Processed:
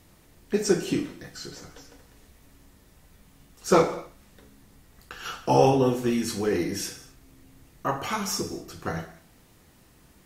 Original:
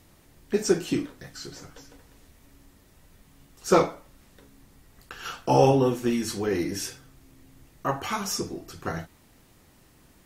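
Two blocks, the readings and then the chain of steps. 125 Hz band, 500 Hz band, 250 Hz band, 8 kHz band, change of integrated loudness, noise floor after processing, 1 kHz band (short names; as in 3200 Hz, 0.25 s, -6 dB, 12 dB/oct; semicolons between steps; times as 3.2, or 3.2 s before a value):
-0.5 dB, 0.0 dB, +0.5 dB, +0.5 dB, 0.0 dB, -57 dBFS, +0.5 dB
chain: non-linear reverb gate 0.28 s falling, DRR 9 dB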